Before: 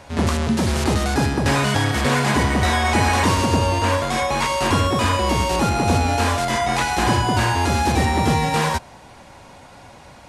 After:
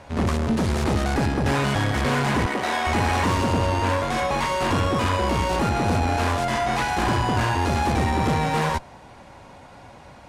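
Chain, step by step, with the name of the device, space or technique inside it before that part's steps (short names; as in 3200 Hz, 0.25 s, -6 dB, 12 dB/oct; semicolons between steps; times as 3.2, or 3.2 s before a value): tube preamp driven hard (tube stage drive 19 dB, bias 0.65; high shelf 3400 Hz -7.5 dB); 2.46–2.87 HPF 300 Hz 12 dB/oct; gain +2.5 dB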